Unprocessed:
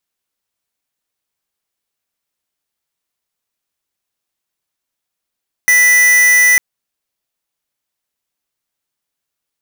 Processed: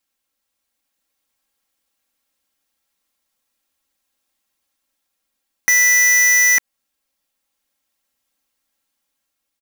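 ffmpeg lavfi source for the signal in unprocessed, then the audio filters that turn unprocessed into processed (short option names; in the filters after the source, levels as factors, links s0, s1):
-f lavfi -i "aevalsrc='0.355*(2*lt(mod(1980*t,1),0.5)-1)':d=0.9:s=44100"
-af "aecho=1:1:3.7:0.81,dynaudnorm=f=350:g=5:m=1.41,alimiter=limit=0.376:level=0:latency=1:release=131"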